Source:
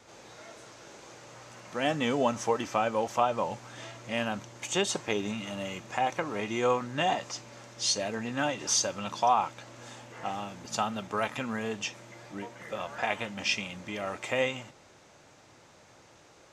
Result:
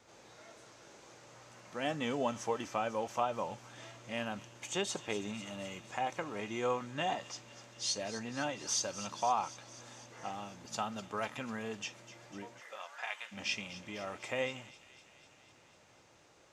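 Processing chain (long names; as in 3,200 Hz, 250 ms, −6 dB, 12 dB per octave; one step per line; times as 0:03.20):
0:12.59–0:13.31: high-pass filter 610 Hz → 1,400 Hz 12 dB per octave
delay with a high-pass on its return 249 ms, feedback 71%, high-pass 3,200 Hz, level −12.5 dB
level −7 dB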